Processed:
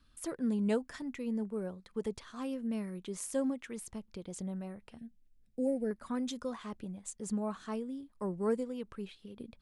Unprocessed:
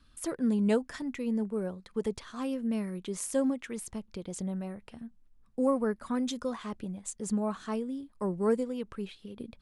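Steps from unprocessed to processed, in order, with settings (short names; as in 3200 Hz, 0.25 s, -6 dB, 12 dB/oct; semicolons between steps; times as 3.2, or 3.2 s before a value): 4.98–5.91 Butterworth band-stop 1100 Hz, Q 0.98; gain -4.5 dB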